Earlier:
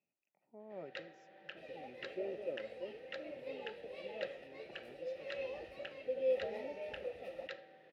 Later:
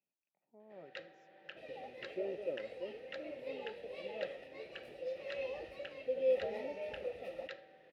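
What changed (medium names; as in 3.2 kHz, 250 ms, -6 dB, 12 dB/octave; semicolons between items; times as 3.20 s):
speech -6.0 dB; first sound: send -10.0 dB; second sound: send on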